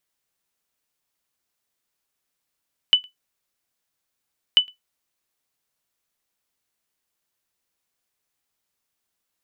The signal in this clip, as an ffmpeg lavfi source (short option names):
-f lavfi -i "aevalsrc='0.531*(sin(2*PI*2990*mod(t,1.64))*exp(-6.91*mod(t,1.64)/0.14)+0.0316*sin(2*PI*2990*max(mod(t,1.64)-0.11,0))*exp(-6.91*max(mod(t,1.64)-0.11,0)/0.14))':d=3.28:s=44100"